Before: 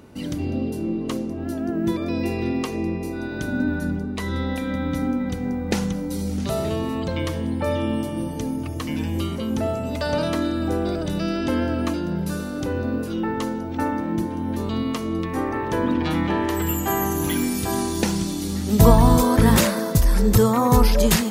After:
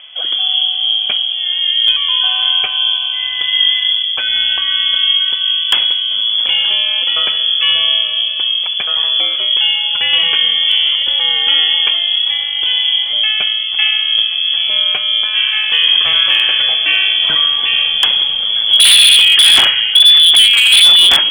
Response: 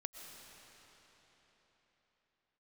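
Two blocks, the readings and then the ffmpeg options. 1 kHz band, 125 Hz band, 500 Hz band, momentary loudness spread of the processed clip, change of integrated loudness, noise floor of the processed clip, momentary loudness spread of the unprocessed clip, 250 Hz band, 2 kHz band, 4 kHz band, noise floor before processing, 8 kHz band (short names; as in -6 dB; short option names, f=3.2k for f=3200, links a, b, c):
-2.5 dB, under -20 dB, -12.5 dB, 9 LU, +13.5 dB, -19 dBFS, 10 LU, under -20 dB, +15.5 dB, +30.0 dB, -29 dBFS, n/a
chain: -af "acontrast=26,lowpass=f=3k:t=q:w=0.5098,lowpass=f=3k:t=q:w=0.6013,lowpass=f=3k:t=q:w=0.9,lowpass=f=3k:t=q:w=2.563,afreqshift=-3500,aeval=exprs='0.447*(abs(mod(val(0)/0.447+3,4)-2)-1)':c=same,volume=5.5dB"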